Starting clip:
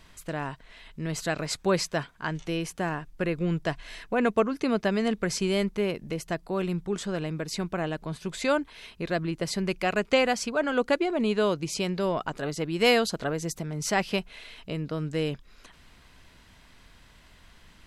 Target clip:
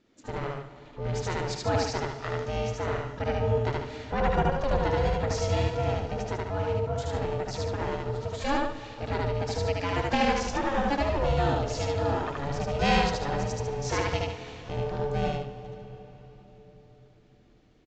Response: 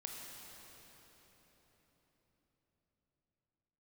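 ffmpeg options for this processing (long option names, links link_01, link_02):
-filter_complex "[0:a]agate=range=-11dB:threshold=-47dB:ratio=16:detection=peak,equalizer=frequency=110:width=0.32:gain=6.5,aeval=exprs='val(0)*sin(2*PI*280*n/s)':channel_layout=same,aecho=1:1:75.8|145.8:0.891|0.398,asplit=2[link_01][link_02];[link_02]asetrate=88200,aresample=44100,atempo=0.5,volume=-13dB[link_03];[link_01][link_03]amix=inputs=2:normalize=0,asplit=2[link_04][link_05];[1:a]atrim=start_sample=2205[link_06];[link_05][link_06]afir=irnorm=-1:irlink=0,volume=-4.5dB[link_07];[link_04][link_07]amix=inputs=2:normalize=0,aresample=16000,aresample=44100,volume=-6dB"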